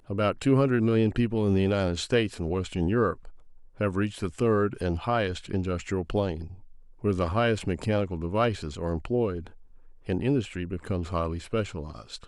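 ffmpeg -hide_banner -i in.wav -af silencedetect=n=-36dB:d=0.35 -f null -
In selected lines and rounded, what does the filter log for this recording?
silence_start: 3.29
silence_end: 3.80 | silence_duration: 0.51
silence_start: 6.53
silence_end: 7.04 | silence_duration: 0.51
silence_start: 9.47
silence_end: 10.09 | silence_duration: 0.62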